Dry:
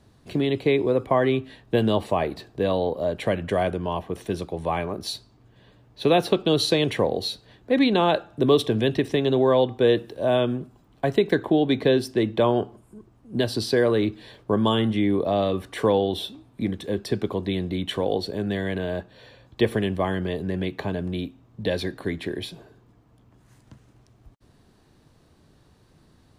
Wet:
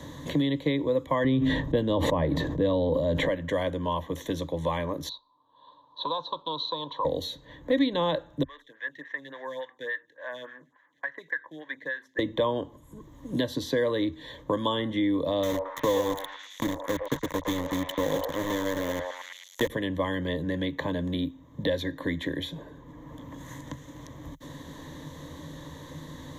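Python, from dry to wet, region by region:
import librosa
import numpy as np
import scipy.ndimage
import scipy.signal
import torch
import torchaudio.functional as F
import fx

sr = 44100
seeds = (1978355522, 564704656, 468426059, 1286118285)

y = fx.chain(x, sr, fx.tilt_eq(slope=-3.0),
    fx.sustainer(db_per_s=22.0), at=(1.24, 3.27))
y = fx.chain(y, sr, fx.leveller(passes=1),
    fx.double_bandpass(hz=2000.0, octaves=2.0),
    fx.air_absorb(metres=130.0), at=(5.09, 7.05))
y = fx.chain(y, sr, fx.cvsd(bps=64000),
    fx.bandpass_q(hz=1700.0, q=7.1),
    fx.stagger_phaser(hz=3.5), at=(8.43, 12.19))
y = fx.chain(y, sr, fx.sample_gate(floor_db=-24.0),
    fx.echo_stepped(ms=111, hz=730.0, octaves=0.7, feedback_pct=70, wet_db=-1.5), at=(15.43, 19.7))
y = fx.ripple_eq(y, sr, per_octave=1.1, db=14)
y = fx.band_squash(y, sr, depth_pct=70)
y = y * 10.0 ** (-6.0 / 20.0)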